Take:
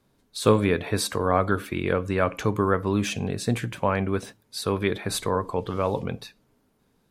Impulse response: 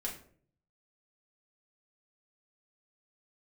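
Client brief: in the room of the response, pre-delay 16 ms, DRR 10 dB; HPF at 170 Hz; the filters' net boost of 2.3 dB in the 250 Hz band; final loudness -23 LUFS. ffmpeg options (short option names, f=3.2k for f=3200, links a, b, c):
-filter_complex "[0:a]highpass=170,equalizer=f=250:t=o:g=4.5,asplit=2[a][b];[1:a]atrim=start_sample=2205,adelay=16[c];[b][c]afir=irnorm=-1:irlink=0,volume=-11dB[d];[a][d]amix=inputs=2:normalize=0,volume=1dB"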